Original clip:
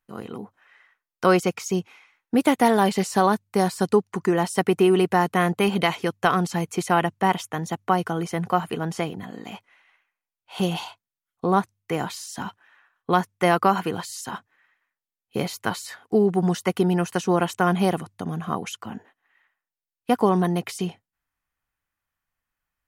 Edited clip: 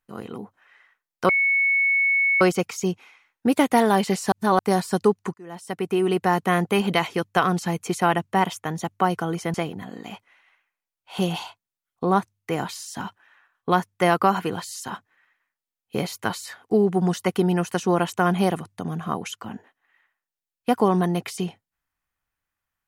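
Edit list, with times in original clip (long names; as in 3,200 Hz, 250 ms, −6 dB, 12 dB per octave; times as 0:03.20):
0:01.29: insert tone 2,210 Hz −17 dBFS 1.12 s
0:03.20–0:03.47: reverse
0:04.22–0:05.27: fade in
0:08.42–0:08.95: remove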